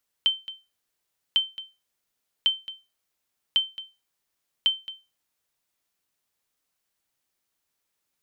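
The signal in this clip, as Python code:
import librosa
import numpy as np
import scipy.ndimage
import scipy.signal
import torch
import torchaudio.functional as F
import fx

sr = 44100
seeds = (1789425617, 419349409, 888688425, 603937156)

y = fx.sonar_ping(sr, hz=3100.0, decay_s=0.26, every_s=1.1, pings=5, echo_s=0.22, echo_db=-16.0, level_db=-13.0)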